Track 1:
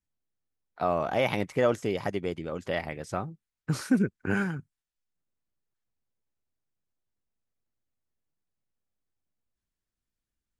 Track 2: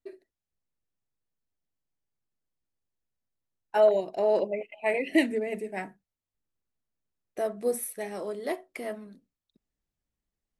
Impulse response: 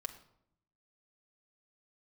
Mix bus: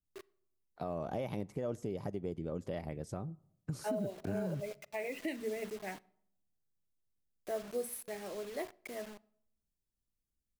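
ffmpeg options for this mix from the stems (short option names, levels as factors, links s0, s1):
-filter_complex "[0:a]equalizer=f=1700:w=0.47:g=-13.5,acompressor=threshold=0.0316:ratio=6,adynamicequalizer=threshold=0.00178:dfrequency=2000:dqfactor=0.7:tfrequency=2000:tqfactor=0.7:attack=5:release=100:ratio=0.375:range=3.5:mode=cutabove:tftype=highshelf,volume=0.841,asplit=3[s0][s1][s2];[s1]volume=0.237[s3];[1:a]bandreject=f=970:w=24,acrusher=bits=6:mix=0:aa=0.000001,adelay=100,volume=0.335,asplit=2[s4][s5];[s5]volume=0.299[s6];[s2]apad=whole_len=471637[s7];[s4][s7]sidechaincompress=threshold=0.00891:ratio=8:attack=16:release=314[s8];[2:a]atrim=start_sample=2205[s9];[s3][s6]amix=inputs=2:normalize=0[s10];[s10][s9]afir=irnorm=-1:irlink=0[s11];[s0][s8][s11]amix=inputs=3:normalize=0,alimiter=level_in=1.41:limit=0.0631:level=0:latency=1:release=219,volume=0.708"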